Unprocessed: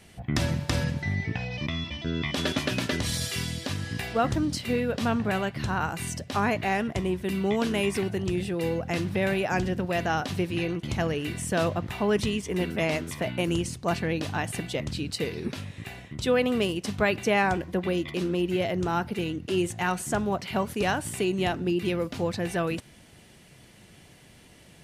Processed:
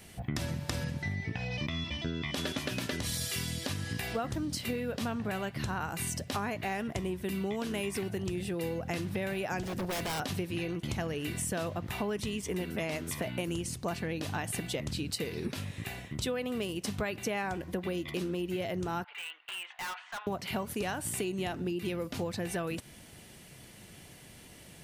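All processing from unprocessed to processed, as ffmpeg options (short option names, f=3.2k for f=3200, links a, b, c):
-filter_complex "[0:a]asettb=1/sr,asplit=3[a][b][c];[a]atrim=end=9.634[d];[b]atrim=start=9.63:end=10.2,asetpts=PTS-STARTPTS,afade=t=in:d=0.004:c=qsin,afade=t=out:st=0.566:d=0.004:c=qsin,bass=f=250:g=-1,treble=f=4k:g=4,aeval=exprs='0.0473*(abs(mod(val(0)/0.0473+3,4)-2)-1)':c=same[e];[c]atrim=start=10.196[f];[d][e]acrossfade=d=0.004:c1=hsin:c2=qsin[g];[g][f]acrossfade=d=0.004:c1=qsin:c2=hsin,asettb=1/sr,asplit=3[h][i][j];[h]atrim=end=19.044[k];[i]atrim=start=19.04:end=20.27,asetpts=PTS-STARTPTS,afade=t=in:d=0.004:c=qsin,afade=t=out:st=1.226:d=0.004:c=qsin,asuperpass=centerf=1700:order=8:qfactor=0.67,volume=36dB,asoftclip=hard,volume=-36dB[l];[j]atrim=start=20.266[m];[k][l]acrossfade=d=0.004:c1=hsin:c2=qsin[n];[n][m]acrossfade=d=0.004:c1=qsin:c2=hsin,highshelf=f=11k:g=12,acompressor=threshold=-31dB:ratio=6"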